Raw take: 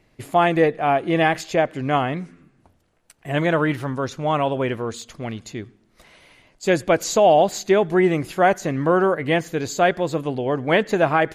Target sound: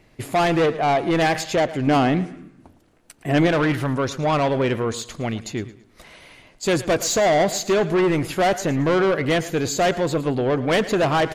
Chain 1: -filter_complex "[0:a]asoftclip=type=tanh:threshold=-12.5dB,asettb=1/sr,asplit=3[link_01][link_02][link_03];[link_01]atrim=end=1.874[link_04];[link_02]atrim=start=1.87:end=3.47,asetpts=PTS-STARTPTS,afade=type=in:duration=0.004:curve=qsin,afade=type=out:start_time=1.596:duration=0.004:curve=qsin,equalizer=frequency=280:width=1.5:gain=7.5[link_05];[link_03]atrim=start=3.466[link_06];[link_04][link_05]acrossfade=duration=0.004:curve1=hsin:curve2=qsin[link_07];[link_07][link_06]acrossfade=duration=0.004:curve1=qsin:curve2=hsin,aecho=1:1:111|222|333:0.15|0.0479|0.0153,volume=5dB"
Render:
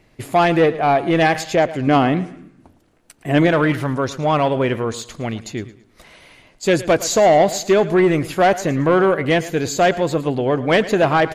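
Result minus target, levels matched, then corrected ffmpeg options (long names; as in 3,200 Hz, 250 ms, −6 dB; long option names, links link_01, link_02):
soft clipping: distortion −7 dB
-filter_complex "[0:a]asoftclip=type=tanh:threshold=-20dB,asettb=1/sr,asplit=3[link_01][link_02][link_03];[link_01]atrim=end=1.874[link_04];[link_02]atrim=start=1.87:end=3.47,asetpts=PTS-STARTPTS,afade=type=in:duration=0.004:curve=qsin,afade=type=out:start_time=1.596:duration=0.004:curve=qsin,equalizer=frequency=280:width=1.5:gain=7.5[link_05];[link_03]atrim=start=3.466[link_06];[link_04][link_05]acrossfade=duration=0.004:curve1=hsin:curve2=qsin[link_07];[link_07][link_06]acrossfade=duration=0.004:curve1=qsin:curve2=hsin,aecho=1:1:111|222|333:0.15|0.0479|0.0153,volume=5dB"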